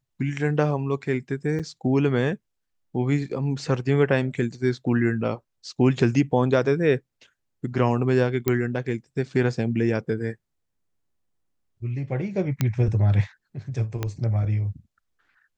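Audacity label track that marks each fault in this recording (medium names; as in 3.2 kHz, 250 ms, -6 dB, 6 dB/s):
1.590000	1.600000	dropout 6.4 ms
8.480000	8.480000	pop -8 dBFS
12.610000	12.610000	pop -9 dBFS
14.030000	14.030000	pop -13 dBFS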